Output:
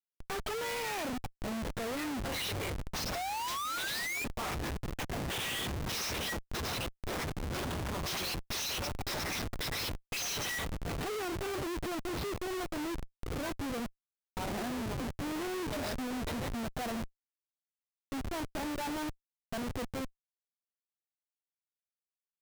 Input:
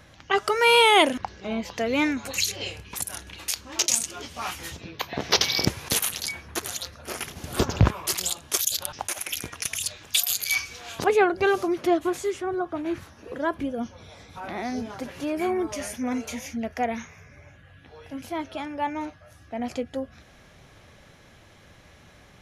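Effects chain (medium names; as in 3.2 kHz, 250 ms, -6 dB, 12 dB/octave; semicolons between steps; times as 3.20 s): knee-point frequency compression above 1.4 kHz 1.5:1; painted sound rise, 3.15–4.25 s, 680–2500 Hz -29 dBFS; Schmitt trigger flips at -35 dBFS; trim -8 dB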